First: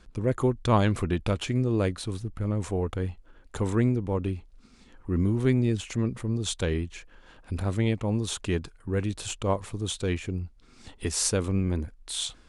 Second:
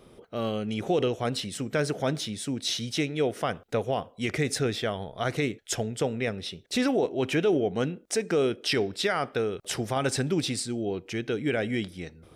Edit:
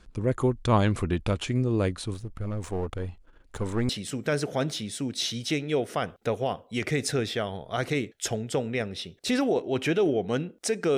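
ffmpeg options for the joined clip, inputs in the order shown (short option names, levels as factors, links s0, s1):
-filter_complex "[0:a]asettb=1/sr,asplit=3[s0][s1][s2];[s0]atrim=end=2.144[s3];[s1]atrim=start=2.14:end=3.89,asetpts=PTS-STARTPTS,afade=t=in:d=0.004:c=qsin,afade=t=out:st=1.746:d=0.004:c=qsin,aeval=exprs='if(lt(val(0),0),0.447*val(0),val(0))':c=same[s4];[s2]atrim=start=3.886[s5];[s3][s4]acrossfade=d=0.004:c1=hsin:c2=qsin[s6];[s6][s5]acrossfade=d=0.004:c1=qsin:c2=hsin,apad=whole_dur=10.97,atrim=end=10.97,atrim=end=3.892[s7];[1:a]atrim=start=1.358:end=8.44[s8];[s7][s8]acrossfade=d=0.004:c1=hsin:c2=hsin"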